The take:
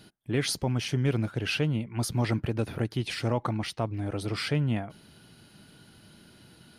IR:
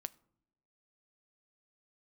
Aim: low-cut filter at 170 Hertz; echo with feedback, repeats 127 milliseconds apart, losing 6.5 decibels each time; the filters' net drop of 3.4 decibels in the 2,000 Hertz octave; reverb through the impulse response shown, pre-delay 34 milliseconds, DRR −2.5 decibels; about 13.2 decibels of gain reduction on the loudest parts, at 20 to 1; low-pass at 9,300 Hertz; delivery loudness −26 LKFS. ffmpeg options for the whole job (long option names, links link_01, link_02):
-filter_complex "[0:a]highpass=170,lowpass=9300,equalizer=frequency=2000:width_type=o:gain=-4.5,acompressor=threshold=-37dB:ratio=20,aecho=1:1:127|254|381|508|635|762:0.473|0.222|0.105|0.0491|0.0231|0.0109,asplit=2[link_01][link_02];[1:a]atrim=start_sample=2205,adelay=34[link_03];[link_02][link_03]afir=irnorm=-1:irlink=0,volume=5.5dB[link_04];[link_01][link_04]amix=inputs=2:normalize=0,volume=11dB"